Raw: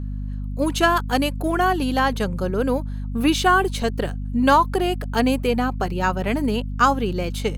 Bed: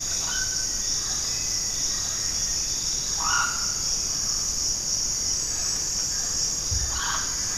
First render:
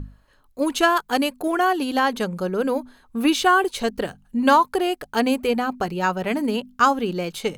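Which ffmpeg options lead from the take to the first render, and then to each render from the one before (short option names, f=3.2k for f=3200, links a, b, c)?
-af "bandreject=f=50:t=h:w=6,bandreject=f=100:t=h:w=6,bandreject=f=150:t=h:w=6,bandreject=f=200:t=h:w=6,bandreject=f=250:t=h:w=6"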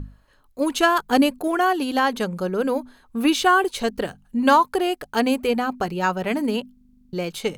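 -filter_complex "[0:a]asettb=1/sr,asplit=3[a][b][c];[a]atrim=end=0.984[d];[b]atrim=start=0.98:end=1.39,asetpts=PTS-STARTPTS,afade=t=in:d=0.004:c=qsin,afade=t=out:st=0.406:d=0.004:c=qsin,lowshelf=f=440:g=8.5[e];[c]atrim=start=1.386[f];[d][e]acrossfade=d=0.004:c1=hsin:c2=qsin[g];[g][f]acrossfade=d=0.004:c1=qsin:c2=hsin,asplit=11[h][i][j][k][l][m][n][o][p][q][r];[h]atrim=end=6.772[s];[i]atrim=start=6.728:end=6.772[t];[j]atrim=start=6.728:end=6.772[u];[k]atrim=start=6.728:end=6.772[v];[l]atrim=start=6.728:end=6.772[w];[m]atrim=start=6.728:end=6.772[x];[n]atrim=start=6.728:end=6.772[y];[o]atrim=start=6.728:end=6.772[z];[p]atrim=start=6.728:end=6.772[aa];[q]atrim=start=6.728:end=6.772[ab];[r]atrim=start=7.128[ac];[s][t]acrossfade=d=0.004:c1=hsin:c2=hsin[ad];[ad][u]acrossfade=d=0.004:c1=hsin:c2=hsin[ae];[ae][v]acrossfade=d=0.004:c1=hsin:c2=hsin[af];[af][w]acrossfade=d=0.004:c1=hsin:c2=hsin[ag];[ag][x]acrossfade=d=0.004:c1=hsin:c2=hsin[ah];[ah][y]acrossfade=d=0.004:c1=hsin:c2=hsin[ai];[ai][z]acrossfade=d=0.004:c1=hsin:c2=hsin[aj];[aj][aa]acrossfade=d=0.004:c1=hsin:c2=hsin[ak];[ak][ab]acrossfade=d=0.004:c1=hsin:c2=hsin[al];[al][ac]acrossfade=d=0.004:c1=hsin:c2=hsin"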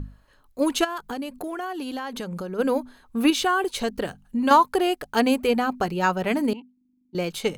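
-filter_complex "[0:a]asplit=3[a][b][c];[a]afade=t=out:st=0.83:d=0.02[d];[b]acompressor=threshold=-28dB:ratio=8:attack=3.2:release=140:knee=1:detection=peak,afade=t=in:st=0.83:d=0.02,afade=t=out:st=2.58:d=0.02[e];[c]afade=t=in:st=2.58:d=0.02[f];[d][e][f]amix=inputs=3:normalize=0,asettb=1/sr,asplit=3[g][h][i];[g]atrim=end=3.304[j];[h]atrim=start=3.3:end=4.51,asetpts=PTS-STARTPTS,afade=t=in:d=0.004:c=qsin,afade=t=out:st=1.206:d=0.004:c=qsin,acompressor=threshold=-22dB:ratio=2:attack=3.2:release=140:knee=1:detection=peak[k];[i]atrim=start=4.506[l];[j][k]acrossfade=d=0.004:c1=hsin:c2=qsin[m];[m][l]acrossfade=d=0.004:c1=qsin:c2=hsin,asettb=1/sr,asplit=3[n][o][p];[n]atrim=end=6.534[q];[o]atrim=start=6.53:end=7.15,asetpts=PTS-STARTPTS,afade=t=in:d=0.004:c=qsin,afade=t=out:st=0.616:d=0.004:c=qsin,asplit=3[r][s][t];[r]bandpass=f=300:t=q:w=8,volume=0dB[u];[s]bandpass=f=870:t=q:w=8,volume=-6dB[v];[t]bandpass=f=2.24k:t=q:w=8,volume=-9dB[w];[u][v][w]amix=inputs=3:normalize=0[x];[p]atrim=start=7.146[y];[q][x]acrossfade=d=0.004:c1=hsin:c2=qsin[z];[z][y]acrossfade=d=0.004:c1=qsin:c2=hsin"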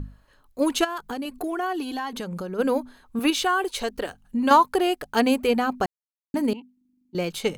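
-filter_complex "[0:a]asettb=1/sr,asplit=3[a][b][c];[a]atrim=end=1.254[d];[b]atrim=start=1.25:end=2.13,asetpts=PTS-STARTPTS,afade=t=in:d=0.004:c=qsin,afade=t=out:st=0.876:d=0.004:c=qsin,aecho=1:1:2.7:0.66,atrim=end_sample=38808[e];[c]atrim=start=2.126[f];[d][e]acrossfade=d=0.004:c1=hsin:c2=qsin[g];[g][f]acrossfade=d=0.004:c1=qsin:c2=hsin,asettb=1/sr,asplit=3[h][i][j];[h]atrim=end=3.194[k];[i]atrim=start=3.19:end=4.24,asetpts=PTS-STARTPTS,afade=t=in:d=0.004:c=qsin,afade=t=out:st=1.046:d=0.004:c=qsin,equalizer=f=160:w=1.5:g=-14[l];[j]atrim=start=4.236[m];[k][l]acrossfade=d=0.004:c1=hsin:c2=qsin[n];[n][m]acrossfade=d=0.004:c1=qsin:c2=hsin,asplit=3[o][p][q];[o]atrim=end=5.86,asetpts=PTS-STARTPTS,afade=t=out:st=5.856:d=0.004:c=hsin[r];[p]atrim=start=5.86:end=6.34,asetpts=PTS-STARTPTS,volume=0[s];[q]atrim=start=6.34,asetpts=PTS-STARTPTS,afade=t=in:d=0.004:c=hsin[t];[r][s][t]concat=n=3:v=0:a=1"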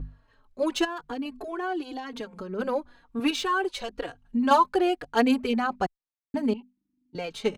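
-filter_complex "[0:a]adynamicsmooth=sensitivity=2.5:basefreq=5.2k,asplit=2[a][b];[b]adelay=3.7,afreqshift=-1[c];[a][c]amix=inputs=2:normalize=1"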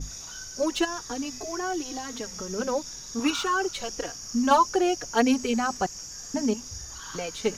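-filter_complex "[1:a]volume=-13.5dB[a];[0:a][a]amix=inputs=2:normalize=0"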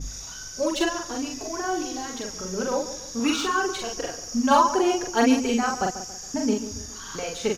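-filter_complex "[0:a]asplit=2[a][b];[b]adelay=43,volume=-2.5dB[c];[a][c]amix=inputs=2:normalize=0,asplit=2[d][e];[e]adelay=139,lowpass=f=2k:p=1,volume=-12dB,asplit=2[f][g];[g]adelay=139,lowpass=f=2k:p=1,volume=0.43,asplit=2[h][i];[i]adelay=139,lowpass=f=2k:p=1,volume=0.43,asplit=2[j][k];[k]adelay=139,lowpass=f=2k:p=1,volume=0.43[l];[d][f][h][j][l]amix=inputs=5:normalize=0"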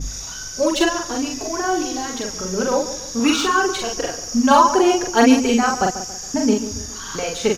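-af "volume=6.5dB,alimiter=limit=-2dB:level=0:latency=1"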